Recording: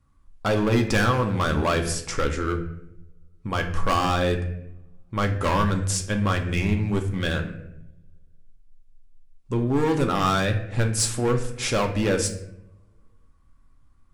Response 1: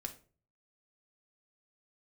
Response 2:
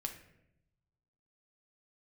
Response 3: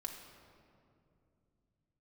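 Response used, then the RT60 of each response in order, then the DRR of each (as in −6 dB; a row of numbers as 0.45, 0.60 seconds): 2; 0.40, 0.85, 2.6 seconds; 3.5, 3.5, 1.0 decibels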